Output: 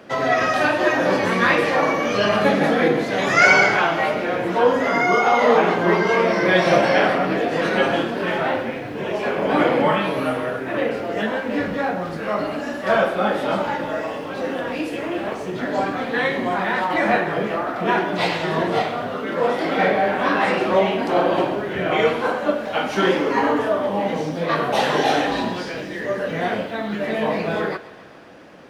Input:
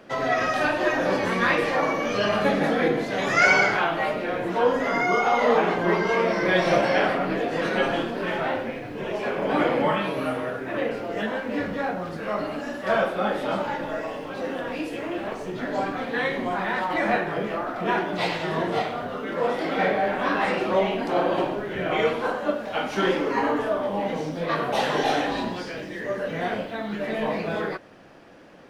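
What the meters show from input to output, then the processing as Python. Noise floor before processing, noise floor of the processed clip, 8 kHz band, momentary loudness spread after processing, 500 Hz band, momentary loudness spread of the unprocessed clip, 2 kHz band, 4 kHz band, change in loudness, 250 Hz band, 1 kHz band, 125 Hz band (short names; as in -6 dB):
-35 dBFS, -30 dBFS, n/a, 9 LU, +4.5 dB, 9 LU, +4.5 dB, +4.5 dB, +4.5 dB, +4.5 dB, +4.5 dB, +4.5 dB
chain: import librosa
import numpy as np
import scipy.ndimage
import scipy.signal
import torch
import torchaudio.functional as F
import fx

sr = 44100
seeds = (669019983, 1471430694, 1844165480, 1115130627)

p1 = scipy.signal.sosfilt(scipy.signal.butter(2, 43.0, 'highpass', fs=sr, output='sos'), x)
p2 = p1 + fx.echo_thinned(p1, sr, ms=135, feedback_pct=73, hz=420.0, wet_db=-17.0, dry=0)
y = F.gain(torch.from_numpy(p2), 4.5).numpy()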